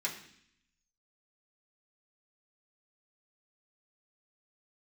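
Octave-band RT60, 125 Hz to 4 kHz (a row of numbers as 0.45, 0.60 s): 0.95, 0.95, 0.65, 0.65, 0.80, 0.80 s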